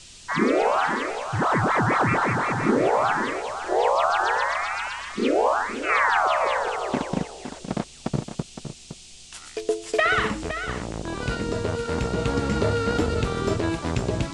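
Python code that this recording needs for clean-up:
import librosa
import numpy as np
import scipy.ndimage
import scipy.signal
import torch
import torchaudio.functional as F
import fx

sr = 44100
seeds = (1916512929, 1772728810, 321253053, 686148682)

y = fx.noise_reduce(x, sr, print_start_s=8.82, print_end_s=9.32, reduce_db=26.0)
y = fx.fix_echo_inverse(y, sr, delay_ms=513, level_db=-10.0)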